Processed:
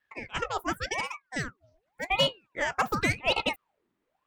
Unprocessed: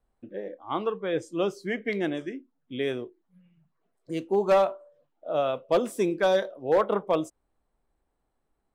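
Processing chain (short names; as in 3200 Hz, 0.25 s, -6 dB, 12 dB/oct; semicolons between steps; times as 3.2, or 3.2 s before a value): wide varispeed 2.05×; ring modulator with a swept carrier 1000 Hz, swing 75%, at 0.89 Hz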